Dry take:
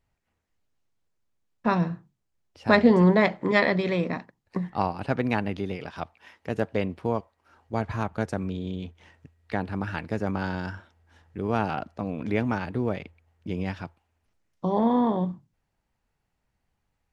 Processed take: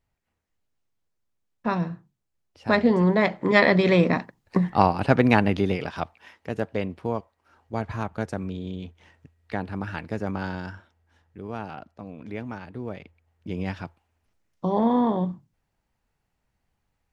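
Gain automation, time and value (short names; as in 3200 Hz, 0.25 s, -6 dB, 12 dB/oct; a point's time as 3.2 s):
3.07 s -2 dB
3.94 s +7.5 dB
5.71 s +7.5 dB
6.54 s -1 dB
10.46 s -1 dB
11.57 s -8.5 dB
12.68 s -8.5 dB
13.7 s +1 dB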